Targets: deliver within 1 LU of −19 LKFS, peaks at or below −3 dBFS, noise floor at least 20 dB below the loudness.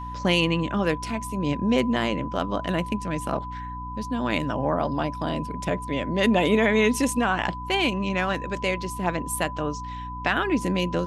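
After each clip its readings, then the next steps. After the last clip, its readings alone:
mains hum 60 Hz; hum harmonics up to 300 Hz; level of the hum −34 dBFS; interfering tone 1,000 Hz; level of the tone −34 dBFS; integrated loudness −25.0 LKFS; sample peak −8.0 dBFS; target loudness −19.0 LKFS
→ hum removal 60 Hz, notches 5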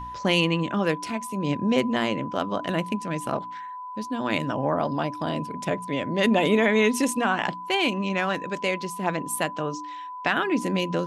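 mains hum none found; interfering tone 1,000 Hz; level of the tone −34 dBFS
→ notch filter 1,000 Hz, Q 30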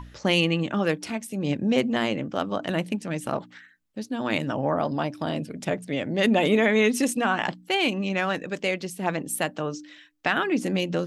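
interfering tone none found; integrated loudness −25.5 LKFS; sample peak −8.5 dBFS; target loudness −19.0 LKFS
→ level +6.5 dB
brickwall limiter −3 dBFS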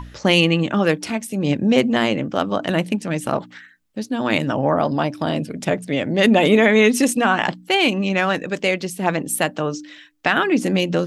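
integrated loudness −19.0 LKFS; sample peak −3.0 dBFS; background noise floor −47 dBFS

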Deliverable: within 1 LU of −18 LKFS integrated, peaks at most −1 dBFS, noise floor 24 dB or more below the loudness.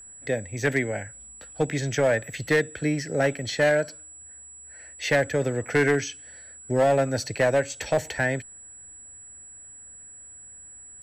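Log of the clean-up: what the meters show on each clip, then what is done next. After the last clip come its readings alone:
share of clipped samples 1.1%; peaks flattened at −15.0 dBFS; interfering tone 7,800 Hz; level of the tone −43 dBFS; integrated loudness −25.0 LKFS; sample peak −15.0 dBFS; target loudness −18.0 LKFS
→ clipped peaks rebuilt −15 dBFS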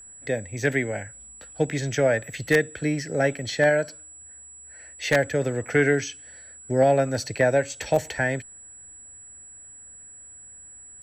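share of clipped samples 0.0%; interfering tone 7,800 Hz; level of the tone −43 dBFS
→ notch filter 7,800 Hz, Q 30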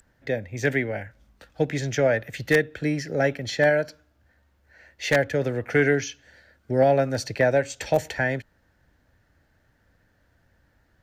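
interfering tone none found; integrated loudness −24.5 LKFS; sample peak −6.0 dBFS; target loudness −18.0 LKFS
→ level +6.5 dB
brickwall limiter −1 dBFS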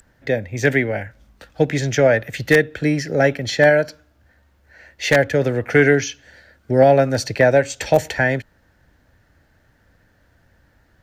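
integrated loudness −18.0 LKFS; sample peak −1.0 dBFS; background noise floor −59 dBFS

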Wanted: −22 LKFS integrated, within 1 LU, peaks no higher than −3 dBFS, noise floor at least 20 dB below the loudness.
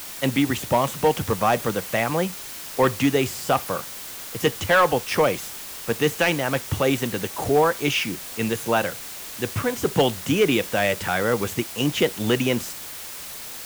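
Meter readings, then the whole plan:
share of clipped samples 0.4%; peaks flattened at −11.0 dBFS; background noise floor −36 dBFS; target noise floor −43 dBFS; integrated loudness −23.0 LKFS; sample peak −11.0 dBFS; target loudness −22.0 LKFS
→ clipped peaks rebuilt −11 dBFS
broadband denoise 7 dB, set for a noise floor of −36 dBFS
level +1 dB

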